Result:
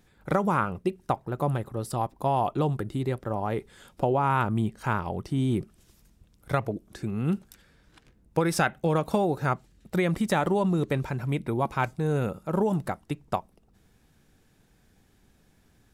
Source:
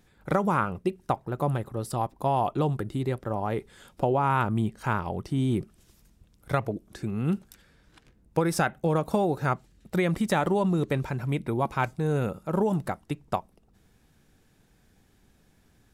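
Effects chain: 8.4–9.18 bell 2900 Hz +4 dB 1.8 oct

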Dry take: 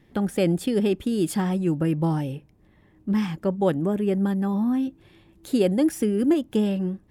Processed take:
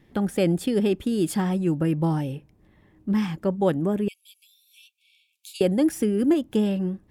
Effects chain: 4.08–5.61 brick-wall FIR high-pass 2200 Hz

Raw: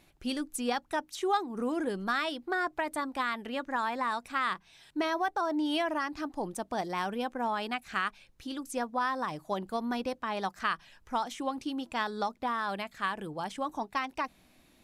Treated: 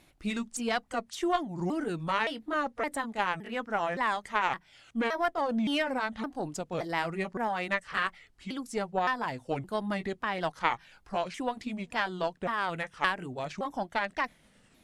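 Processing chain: repeated pitch sweeps -6 st, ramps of 0.567 s; dynamic EQ 1900 Hz, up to +8 dB, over -54 dBFS, Q 3.4; added harmonics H 2 -10 dB, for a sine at -14 dBFS; gain +1.5 dB

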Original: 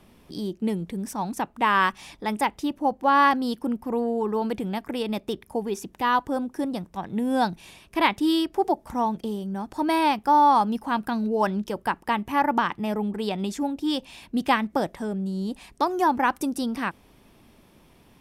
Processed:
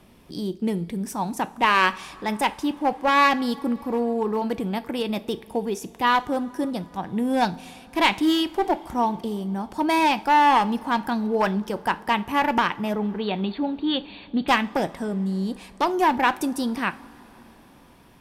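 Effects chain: one-sided clip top -17.5 dBFS; 12.93–14.48 brick-wall FIR low-pass 4600 Hz; two-slope reverb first 0.35 s, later 4.9 s, from -19 dB, DRR 11.5 dB; dynamic EQ 2700 Hz, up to +6 dB, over -37 dBFS, Q 1.4; gain +1.5 dB

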